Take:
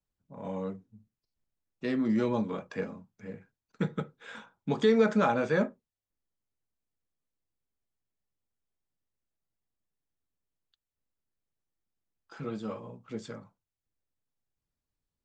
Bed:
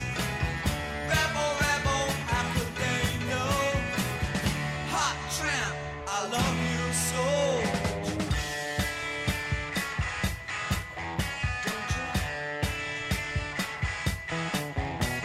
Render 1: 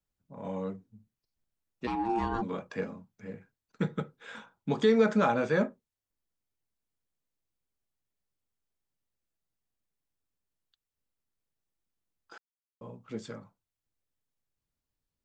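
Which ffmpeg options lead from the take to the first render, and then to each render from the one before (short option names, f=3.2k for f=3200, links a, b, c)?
-filter_complex "[0:a]asplit=3[a][b][c];[a]afade=t=out:st=1.86:d=0.02[d];[b]aeval=exprs='val(0)*sin(2*PI*570*n/s)':c=same,afade=t=in:st=1.86:d=0.02,afade=t=out:st=2.41:d=0.02[e];[c]afade=t=in:st=2.41:d=0.02[f];[d][e][f]amix=inputs=3:normalize=0,asplit=3[g][h][i];[g]atrim=end=12.38,asetpts=PTS-STARTPTS,afade=t=out:st=12.376:d=0.004:c=hsin[j];[h]atrim=start=12.38:end=12.81,asetpts=PTS-STARTPTS,volume=0[k];[i]atrim=start=12.81,asetpts=PTS-STARTPTS,afade=t=in:d=0.004:c=hsin[l];[j][k][l]concat=n=3:v=0:a=1"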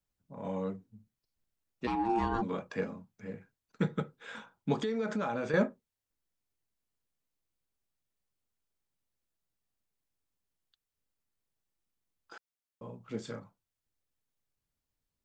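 -filter_complex "[0:a]asettb=1/sr,asplit=3[a][b][c];[a]atrim=end=4.814[d];[b]atrim=start=4.81:end=5.54,asetpts=PTS-STARTPTS,afade=t=in:d=0.004:c=qsin,afade=t=out:st=0.726:d=0.004:c=qsin,acompressor=threshold=-30dB:ratio=5:attack=3.2:release=140:knee=1:detection=peak[e];[c]atrim=start=5.536[f];[d][e]acrossfade=d=0.004:c1=hsin:c2=qsin[g];[g][f]acrossfade=d=0.004:c1=qsin:c2=hsin,asettb=1/sr,asplit=3[h][i][j];[h]atrim=end=12.974[k];[i]atrim=start=12.97:end=13.4,asetpts=PTS-STARTPTS,afade=t=in:d=0.004:c=qsin,afade=t=out:st=0.426:d=0.004:c=qsin,asplit=2[l][m];[m]adelay=34,volume=-9dB[n];[l][n]amix=inputs=2:normalize=0,atrim=end_sample=18963[o];[j]atrim=start=13.396[p];[k][o]acrossfade=d=0.004:c1=hsin:c2=qsin[q];[q][p]acrossfade=d=0.004:c1=qsin:c2=hsin"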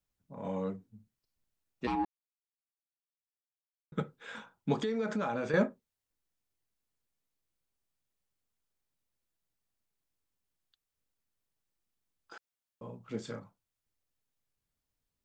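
-filter_complex "[0:a]asplit=3[a][b][c];[a]atrim=end=2.05,asetpts=PTS-STARTPTS,afade=t=out:st=2.046:d=0.004:c=hsin[d];[b]atrim=start=2.05:end=3.92,asetpts=PTS-STARTPTS,volume=0[e];[c]atrim=start=3.92,asetpts=PTS-STARTPTS,afade=t=in:d=0.004:c=hsin[f];[d][e][f]concat=n=3:v=0:a=1"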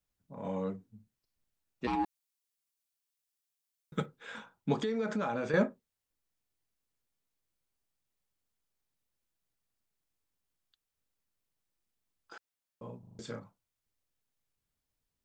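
-filter_complex "[0:a]asettb=1/sr,asplit=3[a][b][c];[a]atrim=end=1.934[d];[b]atrim=start=1.93:end=4.06,asetpts=PTS-STARTPTS,afade=t=in:d=0.004:c=qsin,afade=t=out:st=2.126:d=0.004:c=qsin,highshelf=f=2.9k:g=10.5[e];[c]atrim=start=4.056[f];[d][e]acrossfade=d=0.004:c1=hsin:c2=qsin[g];[g][f]acrossfade=d=0.004:c1=qsin:c2=hsin,asplit=6[h][i][j][k][l][m];[h]atrim=end=13.032[n];[i]atrim=start=12.988:end=13.032[o];[j]atrim=start=12.988:end=13.032[p];[k]atrim=start=12.988:end=13.032[q];[l]atrim=start=12.988:end=13.032[r];[m]atrim=start=13.188[s];[n][o]acrossfade=d=0.004:c1=hsin:c2=hsin[t];[t][p]acrossfade=d=0.004:c1=hsin:c2=hsin[u];[u][q]acrossfade=d=0.004:c1=hsin:c2=hsin[v];[v][r]acrossfade=d=0.004:c1=hsin:c2=hsin[w];[w][s]acrossfade=d=0.004:c1=hsin:c2=hsin"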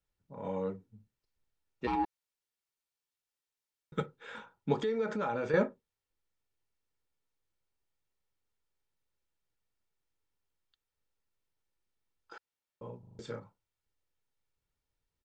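-af "lowpass=f=3.8k:p=1,aecho=1:1:2.2:0.33"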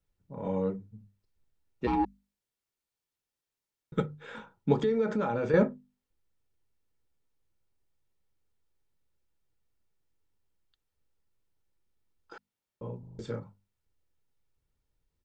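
-af "lowshelf=f=420:g=9.5,bandreject=f=50:t=h:w=6,bandreject=f=100:t=h:w=6,bandreject=f=150:t=h:w=6,bandreject=f=200:t=h:w=6,bandreject=f=250:t=h:w=6"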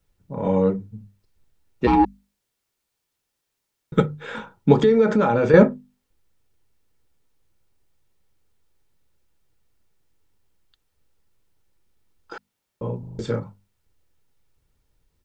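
-af "volume=11dB,alimiter=limit=-1dB:level=0:latency=1"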